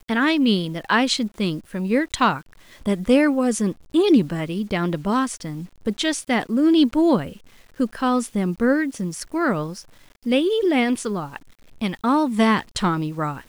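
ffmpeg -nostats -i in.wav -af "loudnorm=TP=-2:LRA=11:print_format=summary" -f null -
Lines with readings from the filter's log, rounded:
Input Integrated:    -21.4 LUFS
Input True Peak:      -5.5 dBTP
Input LRA:             2.2 LU
Input Threshold:     -31.9 LUFS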